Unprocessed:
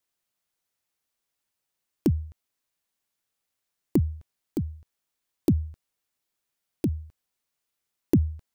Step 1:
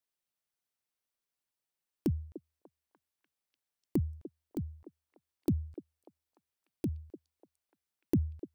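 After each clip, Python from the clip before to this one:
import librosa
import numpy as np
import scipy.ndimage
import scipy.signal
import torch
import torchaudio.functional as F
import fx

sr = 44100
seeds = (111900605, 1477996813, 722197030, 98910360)

y = fx.notch(x, sr, hz=6800.0, q=18.0)
y = fx.echo_stepped(y, sr, ms=296, hz=460.0, octaves=0.7, feedback_pct=70, wet_db=-9.5)
y = y * 10.0 ** (-8.0 / 20.0)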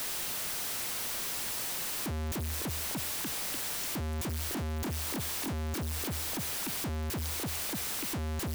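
y = np.sign(x) * np.sqrt(np.mean(np.square(x)))
y = y * 10.0 ** (6.5 / 20.0)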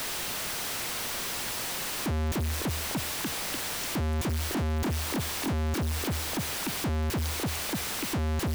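y = fx.high_shelf(x, sr, hz=6300.0, db=-7.0)
y = y * 10.0 ** (6.0 / 20.0)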